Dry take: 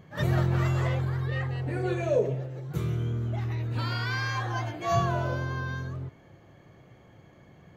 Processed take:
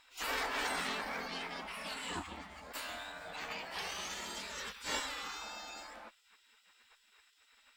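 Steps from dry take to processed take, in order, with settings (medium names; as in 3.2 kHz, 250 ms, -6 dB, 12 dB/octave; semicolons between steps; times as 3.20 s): spectral gate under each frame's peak -25 dB weak; formant shift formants +3 st; Chebyshev shaper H 6 -24 dB, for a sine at -28 dBFS; trim +5 dB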